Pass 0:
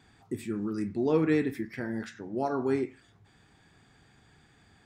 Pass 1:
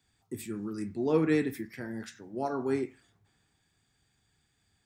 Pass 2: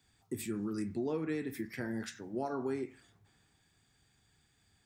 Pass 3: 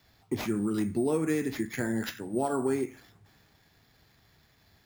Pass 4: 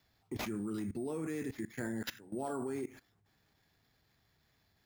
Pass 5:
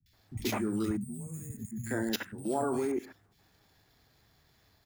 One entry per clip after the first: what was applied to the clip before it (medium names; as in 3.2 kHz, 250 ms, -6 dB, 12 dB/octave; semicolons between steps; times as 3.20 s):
treble shelf 7.4 kHz +11 dB; three bands expanded up and down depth 40%; trim -3 dB
compression 8:1, threshold -34 dBFS, peak gain reduction 14 dB; trim +2 dB
sample-and-hold 5×; trim +7.5 dB
level held to a coarse grid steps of 18 dB; trim -1.5 dB
three bands offset in time lows, highs, mids 60/130 ms, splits 180/2100 Hz; time-frequency box 0.97–1.86 s, 250–6400 Hz -23 dB; trim +8 dB